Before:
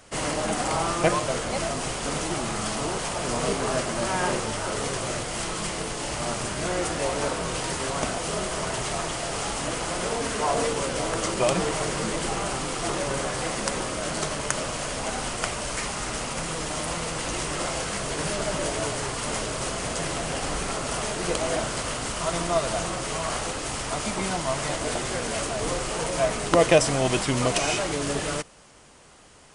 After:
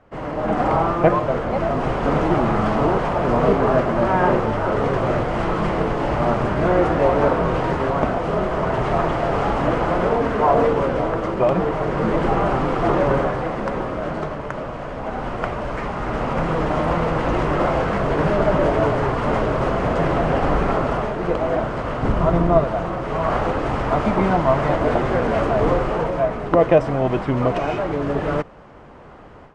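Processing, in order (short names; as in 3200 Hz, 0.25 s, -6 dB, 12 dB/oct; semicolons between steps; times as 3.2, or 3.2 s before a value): 22.03–22.64 low shelf 400 Hz +9.5 dB; AGC gain up to 12.5 dB; LPF 1300 Hz 12 dB/oct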